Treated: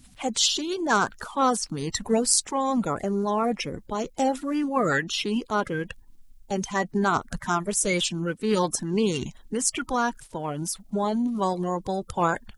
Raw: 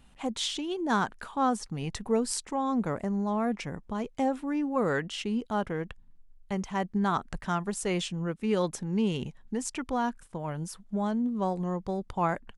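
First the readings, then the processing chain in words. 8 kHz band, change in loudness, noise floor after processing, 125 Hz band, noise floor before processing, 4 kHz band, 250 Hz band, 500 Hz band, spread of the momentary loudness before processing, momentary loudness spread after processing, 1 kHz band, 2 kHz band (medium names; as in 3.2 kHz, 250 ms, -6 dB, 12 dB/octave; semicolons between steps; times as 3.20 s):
+12.5 dB, +5.0 dB, -53 dBFS, +1.5 dB, -57 dBFS, +8.5 dB, +2.5 dB, +4.5 dB, 8 LU, 9 LU, +5.0 dB, +7.5 dB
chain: coarse spectral quantiser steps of 30 dB; treble shelf 3.1 kHz +10 dB; trim +4 dB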